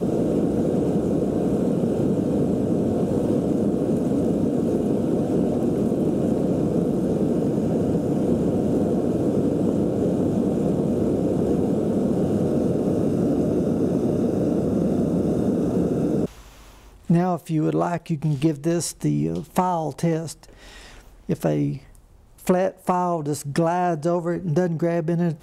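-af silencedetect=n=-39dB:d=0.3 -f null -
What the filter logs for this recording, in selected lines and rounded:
silence_start: 21.95
silence_end: 22.39 | silence_duration: 0.44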